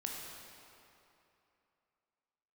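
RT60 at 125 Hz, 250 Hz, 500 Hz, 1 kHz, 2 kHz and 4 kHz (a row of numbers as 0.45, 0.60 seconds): 2.6, 2.7, 2.9, 2.9, 2.6, 2.1 seconds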